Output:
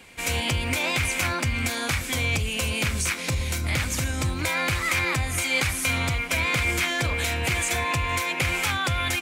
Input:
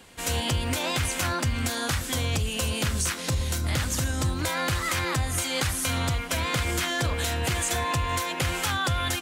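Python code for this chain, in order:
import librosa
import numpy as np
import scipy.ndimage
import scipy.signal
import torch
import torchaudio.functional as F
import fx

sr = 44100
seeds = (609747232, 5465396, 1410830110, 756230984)

y = fx.peak_eq(x, sr, hz=2300.0, db=12.0, octaves=0.3)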